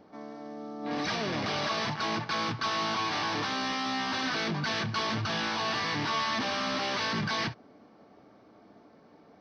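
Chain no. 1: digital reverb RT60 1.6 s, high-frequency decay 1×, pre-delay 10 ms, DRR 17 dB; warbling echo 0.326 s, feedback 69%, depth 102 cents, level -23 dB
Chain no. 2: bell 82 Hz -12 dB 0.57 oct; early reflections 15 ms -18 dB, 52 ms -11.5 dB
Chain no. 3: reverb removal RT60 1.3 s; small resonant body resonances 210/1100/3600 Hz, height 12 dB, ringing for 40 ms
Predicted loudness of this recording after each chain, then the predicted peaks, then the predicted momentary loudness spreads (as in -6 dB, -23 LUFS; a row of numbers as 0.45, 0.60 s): -30.0, -30.0, -27.5 LUFS; -19.0, -18.5, -13.0 dBFS; 11, 7, 7 LU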